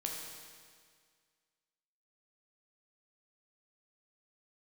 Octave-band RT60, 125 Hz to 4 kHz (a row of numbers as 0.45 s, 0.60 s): 1.9 s, 1.9 s, 1.9 s, 1.9 s, 1.9 s, 1.8 s